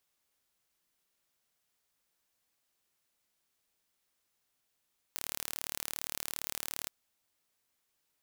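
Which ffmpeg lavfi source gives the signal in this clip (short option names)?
-f lavfi -i "aevalsrc='0.335*eq(mod(n,1179),0)':d=1.73:s=44100"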